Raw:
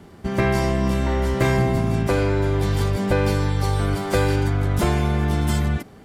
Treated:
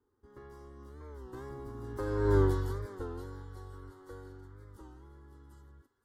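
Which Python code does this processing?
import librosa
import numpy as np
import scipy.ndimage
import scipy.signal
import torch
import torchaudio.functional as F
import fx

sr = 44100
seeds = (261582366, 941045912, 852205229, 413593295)

y = fx.doppler_pass(x, sr, speed_mps=17, closest_m=1.5, pass_at_s=2.38)
y = fx.peak_eq(y, sr, hz=7500.0, db=-7.0, octaves=2.7)
y = fx.fixed_phaser(y, sr, hz=660.0, stages=6)
y = fx.echo_wet_highpass(y, sr, ms=522, feedback_pct=57, hz=1500.0, wet_db=-16.5)
y = fx.record_warp(y, sr, rpm=33.33, depth_cents=160.0)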